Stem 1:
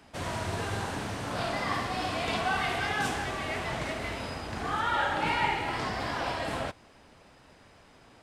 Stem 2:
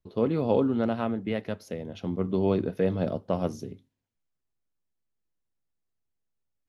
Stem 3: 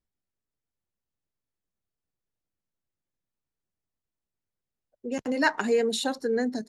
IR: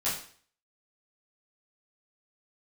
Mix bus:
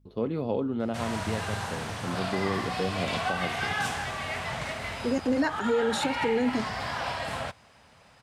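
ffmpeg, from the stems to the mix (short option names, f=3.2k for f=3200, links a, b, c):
-filter_complex "[0:a]highpass=66,equalizer=f=330:t=o:w=0.88:g=-11.5,adelay=800,volume=1.5dB[a];[1:a]aeval=exprs='val(0)+0.00141*(sin(2*PI*50*n/s)+sin(2*PI*2*50*n/s)/2+sin(2*PI*3*50*n/s)/3+sin(2*PI*4*50*n/s)/4+sin(2*PI*5*50*n/s)/5)':c=same,volume=-3.5dB[b];[2:a]equalizer=f=330:w=0.62:g=7.5,volume=-0.5dB[c];[a][b][c]amix=inputs=3:normalize=0,alimiter=limit=-17.5dB:level=0:latency=1:release=182"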